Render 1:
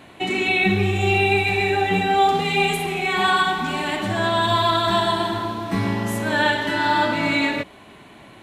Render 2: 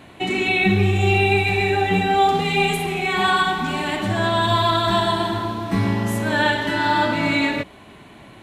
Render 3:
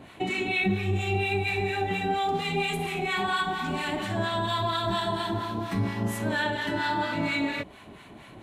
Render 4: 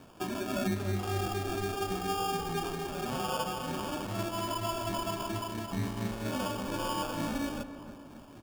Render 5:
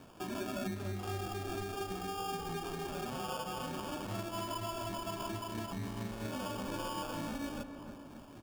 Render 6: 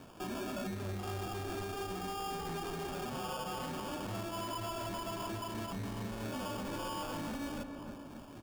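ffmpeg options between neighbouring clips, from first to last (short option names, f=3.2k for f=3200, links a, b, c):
-af "lowshelf=f=170:g=5.5"
-filter_complex "[0:a]acompressor=threshold=-25dB:ratio=2,acrossover=split=920[a][b];[a]aeval=exprs='val(0)*(1-0.7/2+0.7/2*cos(2*PI*4.3*n/s))':c=same[c];[b]aeval=exprs='val(0)*(1-0.7/2-0.7/2*cos(2*PI*4.3*n/s))':c=same[d];[c][d]amix=inputs=2:normalize=0"
-filter_complex "[0:a]acrusher=samples=22:mix=1:aa=0.000001,asplit=2[a][b];[b]adelay=287,lowpass=f=1.6k:p=1,volume=-11dB,asplit=2[c][d];[d]adelay=287,lowpass=f=1.6k:p=1,volume=0.54,asplit=2[e][f];[f]adelay=287,lowpass=f=1.6k:p=1,volume=0.54,asplit=2[g][h];[h]adelay=287,lowpass=f=1.6k:p=1,volume=0.54,asplit=2[i][j];[j]adelay=287,lowpass=f=1.6k:p=1,volume=0.54,asplit=2[k][l];[l]adelay=287,lowpass=f=1.6k:p=1,volume=0.54[m];[a][c][e][g][i][k][m]amix=inputs=7:normalize=0,volume=-6dB"
-af "alimiter=level_in=5dB:limit=-24dB:level=0:latency=1:release=262,volume=-5dB,volume=-1.5dB"
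-af "asoftclip=type=hard:threshold=-38dB,volume=2dB"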